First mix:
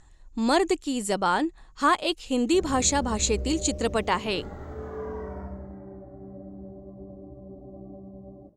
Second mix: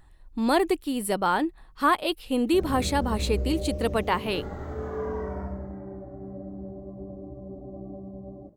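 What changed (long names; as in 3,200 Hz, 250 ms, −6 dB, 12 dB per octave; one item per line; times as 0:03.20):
speech: remove low-pass with resonance 6,900 Hz, resonance Q 8.8
background +3.5 dB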